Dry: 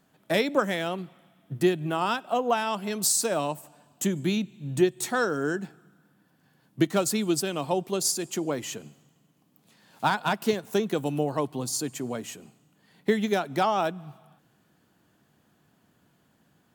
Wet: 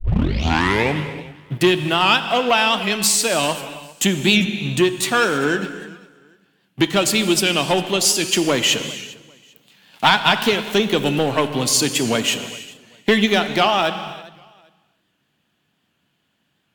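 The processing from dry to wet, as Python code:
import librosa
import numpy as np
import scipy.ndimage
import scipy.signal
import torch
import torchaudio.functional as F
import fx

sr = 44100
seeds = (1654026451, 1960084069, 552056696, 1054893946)

p1 = fx.tape_start_head(x, sr, length_s=1.2)
p2 = fx.rider(p1, sr, range_db=5, speed_s=0.5)
p3 = fx.leveller(p2, sr, passes=2)
p4 = fx.peak_eq(p3, sr, hz=2900.0, db=13.0, octaves=1.3)
p5 = p4 + fx.echo_feedback(p4, sr, ms=398, feedback_pct=23, wet_db=-21, dry=0)
p6 = fx.rev_gated(p5, sr, seeds[0], gate_ms=350, shape='flat', drr_db=9.5)
y = fx.record_warp(p6, sr, rpm=78.0, depth_cents=100.0)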